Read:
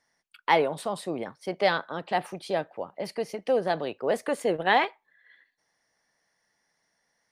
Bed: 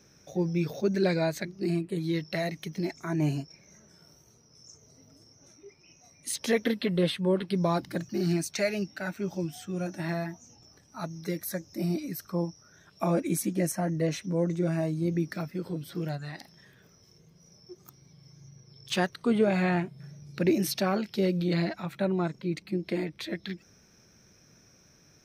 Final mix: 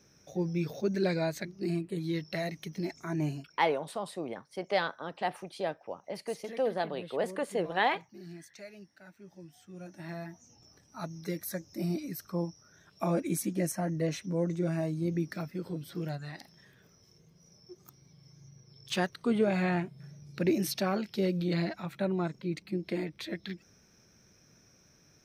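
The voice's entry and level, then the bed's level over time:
3.10 s, -5.5 dB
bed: 3.19 s -3.5 dB
3.82 s -19.5 dB
9.26 s -19.5 dB
10.66 s -3 dB

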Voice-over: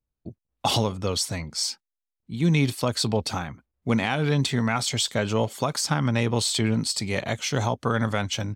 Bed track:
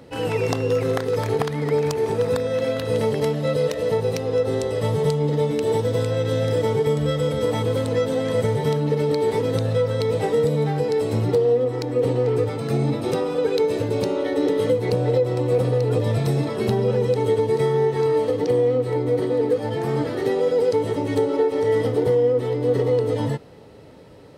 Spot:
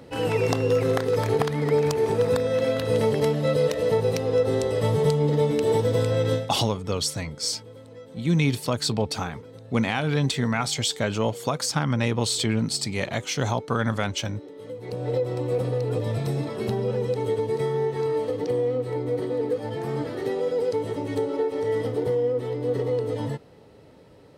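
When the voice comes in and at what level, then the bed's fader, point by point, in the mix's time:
5.85 s, -0.5 dB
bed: 6.34 s -0.5 dB
6.55 s -22.5 dB
14.52 s -22.5 dB
15.14 s -5.5 dB

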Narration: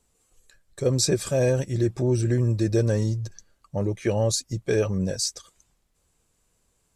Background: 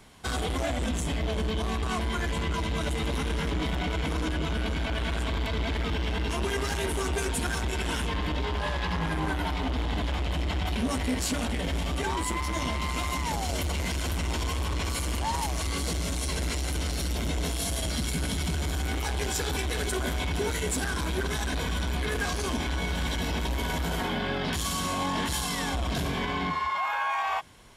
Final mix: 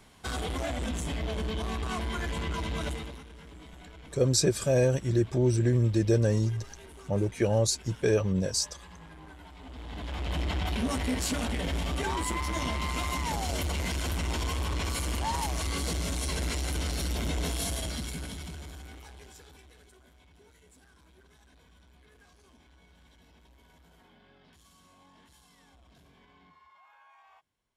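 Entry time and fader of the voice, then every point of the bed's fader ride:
3.35 s, -2.0 dB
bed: 2.89 s -3.5 dB
3.27 s -20 dB
9.53 s -20 dB
10.35 s -1.5 dB
17.64 s -1.5 dB
20.05 s -30.5 dB

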